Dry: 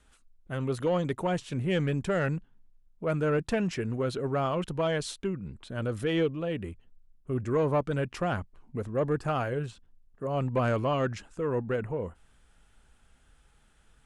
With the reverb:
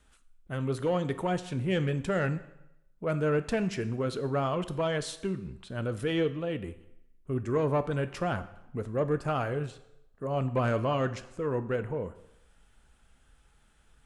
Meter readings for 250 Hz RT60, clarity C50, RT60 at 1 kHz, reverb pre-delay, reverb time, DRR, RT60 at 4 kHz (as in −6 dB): 0.80 s, 14.5 dB, 0.85 s, 4 ms, 0.85 s, 11.0 dB, 0.75 s